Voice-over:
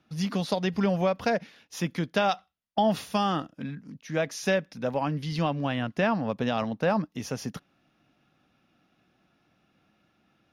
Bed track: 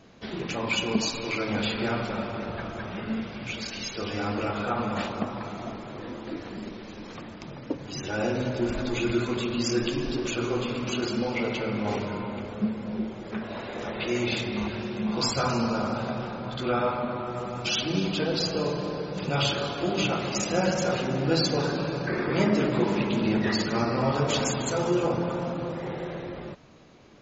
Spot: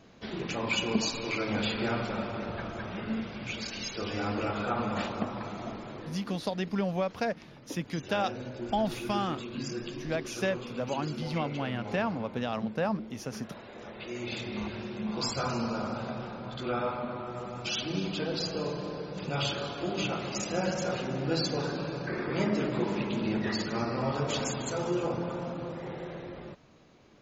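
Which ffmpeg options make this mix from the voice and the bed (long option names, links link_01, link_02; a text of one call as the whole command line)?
ffmpeg -i stem1.wav -i stem2.wav -filter_complex "[0:a]adelay=5950,volume=-5dB[link_01];[1:a]volume=3dB,afade=type=out:start_time=5.9:duration=0.36:silence=0.375837,afade=type=in:start_time=14.15:duration=0.42:silence=0.530884[link_02];[link_01][link_02]amix=inputs=2:normalize=0" out.wav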